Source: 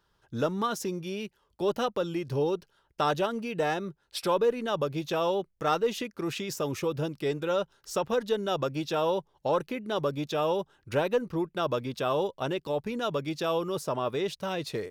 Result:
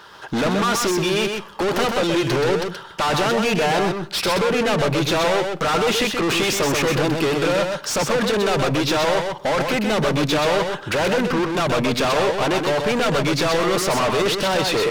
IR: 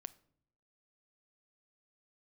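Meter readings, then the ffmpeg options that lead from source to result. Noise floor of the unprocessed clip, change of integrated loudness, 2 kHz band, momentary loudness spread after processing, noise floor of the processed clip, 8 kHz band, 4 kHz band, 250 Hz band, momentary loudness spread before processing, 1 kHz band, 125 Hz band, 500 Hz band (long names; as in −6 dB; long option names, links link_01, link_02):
−72 dBFS, +10.5 dB, +16.0 dB, 3 LU, −37 dBFS, +16.5 dB, +15.0 dB, +11.0 dB, 6 LU, +10.0 dB, +11.0 dB, +8.5 dB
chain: -filter_complex "[0:a]asplit=2[link_01][link_02];[link_02]highpass=frequency=720:poles=1,volume=35dB,asoftclip=type=tanh:threshold=-13dB[link_03];[link_01][link_03]amix=inputs=2:normalize=0,lowpass=frequency=3400:poles=1,volume=-6dB,asoftclip=type=tanh:threshold=-21dB,asplit=2[link_04][link_05];[1:a]atrim=start_sample=2205,adelay=127[link_06];[link_05][link_06]afir=irnorm=-1:irlink=0,volume=0dB[link_07];[link_04][link_07]amix=inputs=2:normalize=0,volume=3.5dB"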